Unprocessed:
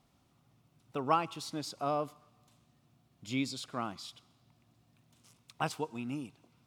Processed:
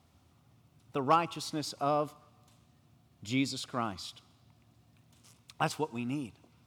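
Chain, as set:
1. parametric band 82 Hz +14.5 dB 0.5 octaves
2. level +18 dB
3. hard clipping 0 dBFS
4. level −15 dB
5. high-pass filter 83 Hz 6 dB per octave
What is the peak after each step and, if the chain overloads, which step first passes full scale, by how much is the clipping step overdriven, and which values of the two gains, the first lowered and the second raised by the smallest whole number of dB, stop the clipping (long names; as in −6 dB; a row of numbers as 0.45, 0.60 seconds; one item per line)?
−14.5, +3.5, 0.0, −15.0, −14.5 dBFS
step 2, 3.5 dB
step 2 +14 dB, step 4 −11 dB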